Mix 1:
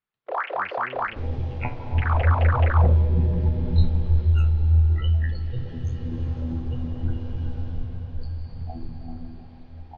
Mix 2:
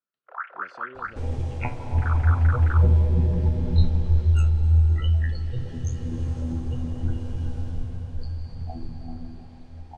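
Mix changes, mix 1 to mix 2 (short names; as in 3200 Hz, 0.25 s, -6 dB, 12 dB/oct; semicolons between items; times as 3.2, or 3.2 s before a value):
speech: add BPF 270–6200 Hz; first sound: add band-pass 1400 Hz, Q 5.8; master: remove LPF 4500 Hz 24 dB/oct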